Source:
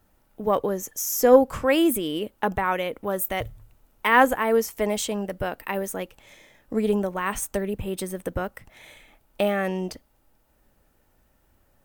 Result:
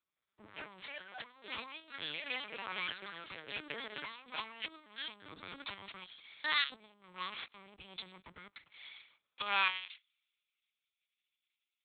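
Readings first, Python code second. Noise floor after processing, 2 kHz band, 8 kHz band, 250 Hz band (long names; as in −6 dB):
below −85 dBFS, −9.5 dB, below −40 dB, −30.5 dB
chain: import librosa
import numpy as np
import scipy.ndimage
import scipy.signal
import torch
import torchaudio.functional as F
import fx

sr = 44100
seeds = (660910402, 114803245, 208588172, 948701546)

p1 = fx.lower_of_two(x, sr, delay_ms=0.86)
p2 = fx.low_shelf(p1, sr, hz=110.0, db=11.5)
p3 = fx.filter_sweep_highpass(p2, sr, from_hz=160.0, to_hz=2700.0, start_s=9.24, end_s=9.84, q=1.6)
p4 = fx.level_steps(p3, sr, step_db=18)
p5 = p3 + (p4 * 10.0 ** (-2.5 / 20.0))
p6 = fx.echo_pitch(p5, sr, ms=171, semitones=7, count=2, db_per_echo=-3.0)
p7 = fx.over_compress(p6, sr, threshold_db=-26.0, ratio=-1.0)
p8 = fx.lpc_vocoder(p7, sr, seeds[0], excitation='pitch_kept', order=8)
p9 = np.diff(p8, prepend=0.0)
p10 = fx.notch(p9, sr, hz=720.0, q=16.0)
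p11 = fx.band_widen(p10, sr, depth_pct=40)
y = p11 * 10.0 ** (2.0 / 20.0)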